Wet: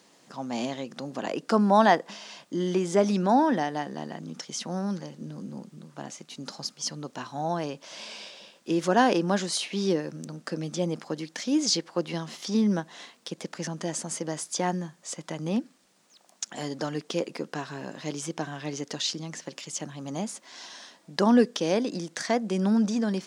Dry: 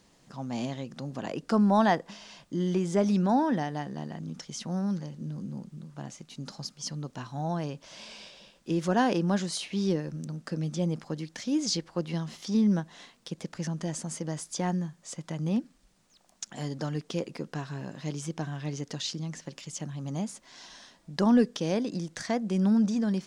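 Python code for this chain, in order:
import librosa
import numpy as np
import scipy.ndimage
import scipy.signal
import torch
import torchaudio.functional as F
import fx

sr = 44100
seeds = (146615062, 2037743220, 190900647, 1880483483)

y = scipy.signal.sosfilt(scipy.signal.butter(2, 260.0, 'highpass', fs=sr, output='sos'), x)
y = F.gain(torch.from_numpy(y), 5.0).numpy()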